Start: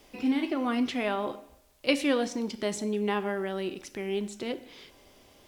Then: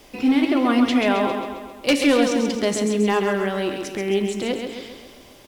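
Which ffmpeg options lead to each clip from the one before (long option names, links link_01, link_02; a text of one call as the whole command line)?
ffmpeg -i in.wav -filter_complex "[0:a]asoftclip=type=hard:threshold=-20.5dB,asplit=2[link_01][link_02];[link_02]aecho=0:1:134|268|402|536|670|804|938:0.501|0.271|0.146|0.0789|0.0426|0.023|0.0124[link_03];[link_01][link_03]amix=inputs=2:normalize=0,volume=8.5dB" out.wav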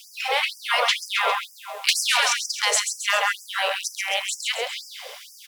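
ffmpeg -i in.wav -af "afftfilt=real='re*lt(hypot(re,im),0.282)':imag='im*lt(hypot(re,im),0.282)':win_size=1024:overlap=0.75,afftfilt=real='re*gte(b*sr/1024,420*pow(4900/420,0.5+0.5*sin(2*PI*2.1*pts/sr)))':imag='im*gte(b*sr/1024,420*pow(4900/420,0.5+0.5*sin(2*PI*2.1*pts/sr)))':win_size=1024:overlap=0.75,volume=8.5dB" out.wav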